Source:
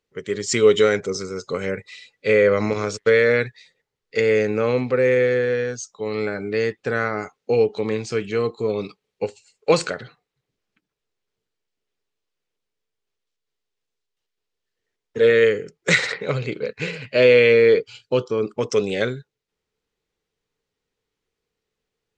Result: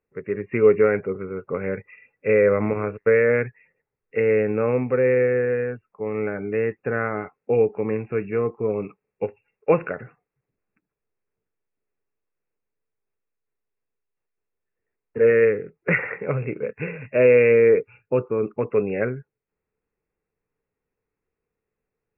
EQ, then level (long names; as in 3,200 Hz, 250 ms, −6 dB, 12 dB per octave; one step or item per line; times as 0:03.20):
linear-phase brick-wall low-pass 2,800 Hz
high-frequency loss of the air 420 metres
0.0 dB